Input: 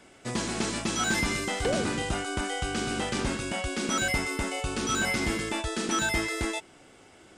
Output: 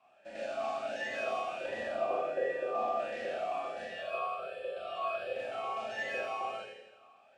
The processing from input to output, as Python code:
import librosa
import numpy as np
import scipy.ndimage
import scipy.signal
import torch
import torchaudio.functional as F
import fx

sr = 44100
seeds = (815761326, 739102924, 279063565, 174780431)

y = fx.tilt_eq(x, sr, slope=-2.0, at=(1.91, 2.97))
y = y * np.sin(2.0 * np.pi * 450.0 * np.arange(len(y)) / sr)
y = fx.fixed_phaser(y, sr, hz=1300.0, stages=8, at=(3.85, 5.36))
y = fx.echo_feedback(y, sr, ms=84, feedback_pct=57, wet_db=-11)
y = fx.rev_schroeder(y, sr, rt60_s=0.87, comb_ms=28, drr_db=-4.0)
y = fx.vowel_sweep(y, sr, vowels='a-e', hz=1.4)